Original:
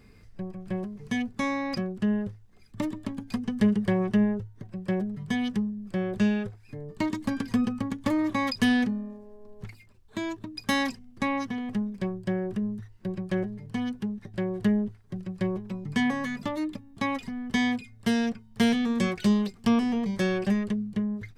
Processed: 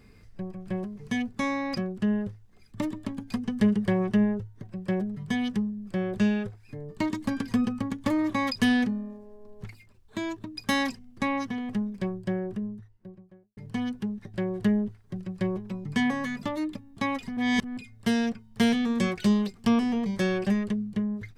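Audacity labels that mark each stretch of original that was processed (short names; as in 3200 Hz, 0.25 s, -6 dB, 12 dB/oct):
12.050000	13.570000	studio fade out
17.370000	17.770000	reverse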